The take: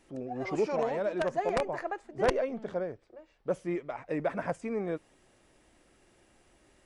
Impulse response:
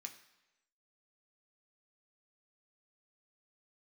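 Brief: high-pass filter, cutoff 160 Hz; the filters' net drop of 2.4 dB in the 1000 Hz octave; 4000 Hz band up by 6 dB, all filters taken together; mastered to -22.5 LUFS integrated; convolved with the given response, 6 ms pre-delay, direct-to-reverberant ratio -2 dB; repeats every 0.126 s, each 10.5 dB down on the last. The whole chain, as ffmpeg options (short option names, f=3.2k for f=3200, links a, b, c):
-filter_complex "[0:a]highpass=160,equalizer=f=1k:t=o:g=-4,equalizer=f=4k:t=o:g=8,aecho=1:1:126|252|378:0.299|0.0896|0.0269,asplit=2[a][b];[1:a]atrim=start_sample=2205,adelay=6[c];[b][c]afir=irnorm=-1:irlink=0,volume=7dB[d];[a][d]amix=inputs=2:normalize=0,volume=8dB"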